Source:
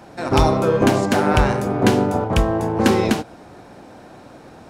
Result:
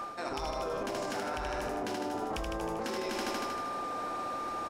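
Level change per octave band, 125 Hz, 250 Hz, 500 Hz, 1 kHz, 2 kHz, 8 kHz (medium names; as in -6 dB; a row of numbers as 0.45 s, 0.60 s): -25.5 dB, -20.0 dB, -16.0 dB, -12.0 dB, -13.5 dB, -12.0 dB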